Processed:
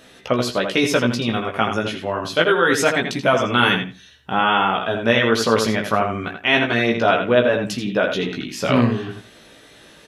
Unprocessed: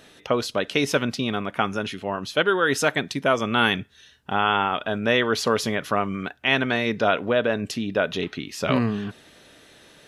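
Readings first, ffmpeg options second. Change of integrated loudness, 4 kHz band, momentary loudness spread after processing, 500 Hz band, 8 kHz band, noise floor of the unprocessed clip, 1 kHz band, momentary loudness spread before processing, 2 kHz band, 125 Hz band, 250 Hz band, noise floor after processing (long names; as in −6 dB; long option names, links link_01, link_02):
+4.5 dB, +4.0 dB, 8 LU, +5.0 dB, +3.5 dB, −53 dBFS, +4.5 dB, 8 LU, +4.5 dB, +5.0 dB, +4.5 dB, −47 dBFS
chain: -filter_complex "[0:a]asplit=2[link_01][link_02];[link_02]adelay=82,lowpass=frequency=3900:poles=1,volume=-6dB,asplit=2[link_03][link_04];[link_04]adelay=82,lowpass=frequency=3900:poles=1,volume=0.18,asplit=2[link_05][link_06];[link_06]adelay=82,lowpass=frequency=3900:poles=1,volume=0.18[link_07];[link_01][link_03][link_05][link_07]amix=inputs=4:normalize=0,flanger=delay=15.5:depth=2.9:speed=0.25,volume=6.5dB"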